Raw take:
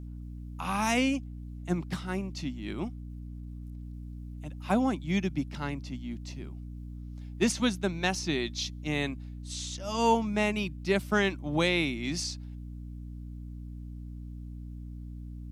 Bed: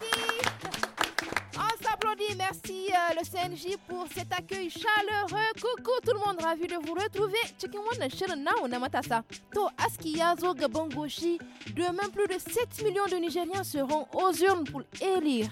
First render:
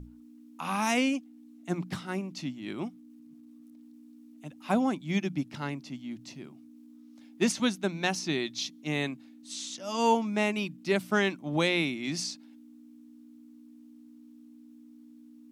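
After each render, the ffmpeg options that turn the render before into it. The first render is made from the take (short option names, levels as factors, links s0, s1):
-af "bandreject=f=60:t=h:w=6,bandreject=f=120:t=h:w=6,bandreject=f=180:t=h:w=6"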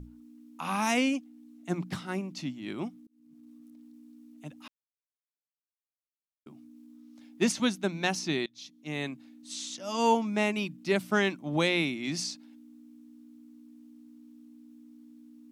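-filter_complex "[0:a]asplit=5[s0][s1][s2][s3][s4];[s0]atrim=end=3.07,asetpts=PTS-STARTPTS,afade=t=out:st=3.066:d=0.004:c=hsin[s5];[s1]atrim=start=3.07:end=4.68,asetpts=PTS-STARTPTS,afade=t=in:d=0.4,afade=t=out:st=1.606:d=0.004:c=hsin[s6];[s2]atrim=start=4.68:end=6.46,asetpts=PTS-STARTPTS,volume=0[s7];[s3]atrim=start=6.46:end=8.46,asetpts=PTS-STARTPTS,afade=t=in:d=0.004:c=hsin,afade=t=out:st=1.996:d=0.004:c=hsin:silence=0.0668344[s8];[s4]atrim=start=8.46,asetpts=PTS-STARTPTS,afade=t=in:d=0.84:silence=0.0668344[s9];[s5][s6][s7][s8][s9]concat=n=5:v=0:a=1"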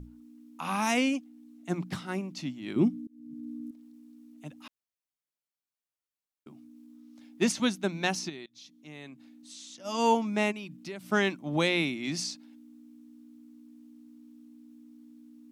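-filter_complex "[0:a]asettb=1/sr,asplit=3[s0][s1][s2];[s0]atrim=end=2.764[s3];[s1]atrim=start=2.76:end=3.71,asetpts=PTS-STARTPTS,afade=t=in:d=0.004:c=qsin,afade=t=out:st=0.946:d=0.004:c=qsin,lowshelf=f=450:t=q:w=1.5:g=10.5[s4];[s2]atrim=start=3.706[s5];[s3][s4]acrossfade=d=0.004:c1=hsin:c2=qsin[s6];[s6][s5]acrossfade=d=0.004:c1=qsin:c2=hsin,asplit=3[s7][s8][s9];[s7]afade=t=out:st=8.28:d=0.02[s10];[s8]acompressor=threshold=0.00316:ratio=2:attack=3.2:release=140:knee=1:detection=peak,afade=t=in:st=8.28:d=0.02,afade=t=out:st=9.84:d=0.02[s11];[s9]afade=t=in:st=9.84:d=0.02[s12];[s10][s11][s12]amix=inputs=3:normalize=0,asplit=3[s13][s14][s15];[s13]afade=t=out:st=10.51:d=0.02[s16];[s14]acompressor=threshold=0.0126:ratio=4:attack=3.2:release=140:knee=1:detection=peak,afade=t=in:st=10.51:d=0.02,afade=t=out:st=11.09:d=0.02[s17];[s15]afade=t=in:st=11.09:d=0.02[s18];[s16][s17][s18]amix=inputs=3:normalize=0"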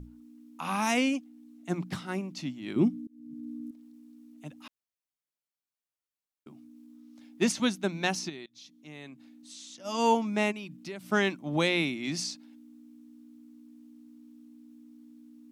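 -af anull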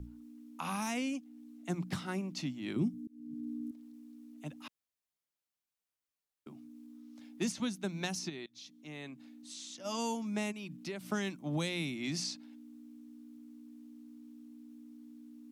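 -filter_complex "[0:a]acrossover=split=170|5000[s0][s1][s2];[s1]acompressor=threshold=0.0158:ratio=6[s3];[s2]alimiter=level_in=2.51:limit=0.0631:level=0:latency=1:release=493,volume=0.398[s4];[s0][s3][s4]amix=inputs=3:normalize=0"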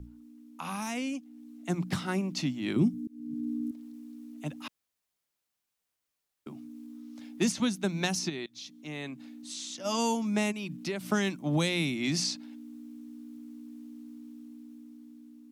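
-af "dynaudnorm=f=440:g=7:m=2.24"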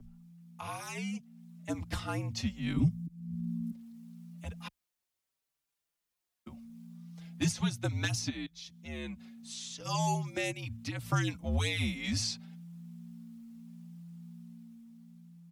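-filter_complex "[0:a]afreqshift=-70,asplit=2[s0][s1];[s1]adelay=4.7,afreqshift=0.73[s2];[s0][s2]amix=inputs=2:normalize=1"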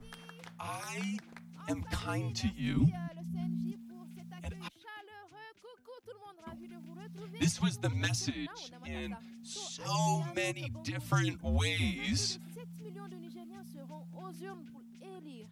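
-filter_complex "[1:a]volume=0.0708[s0];[0:a][s0]amix=inputs=2:normalize=0"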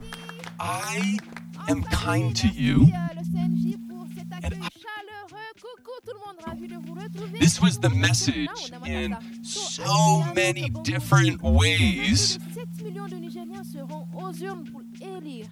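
-af "volume=3.98"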